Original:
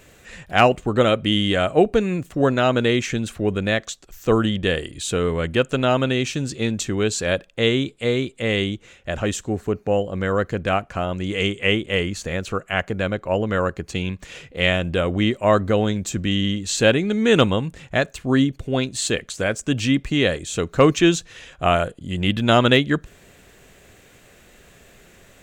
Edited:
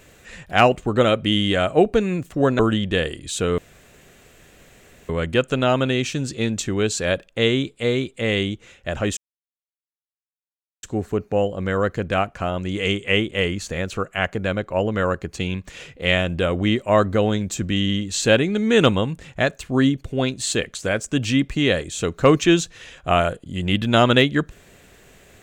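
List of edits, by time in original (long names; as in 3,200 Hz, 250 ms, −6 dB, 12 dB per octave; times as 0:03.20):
0:02.59–0:04.31: remove
0:05.30: splice in room tone 1.51 s
0:09.38: splice in silence 1.66 s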